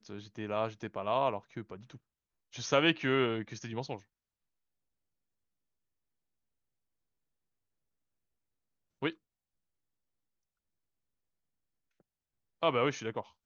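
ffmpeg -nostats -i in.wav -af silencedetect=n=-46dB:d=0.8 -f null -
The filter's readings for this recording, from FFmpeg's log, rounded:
silence_start: 3.99
silence_end: 9.02 | silence_duration: 5.03
silence_start: 9.12
silence_end: 12.62 | silence_duration: 3.49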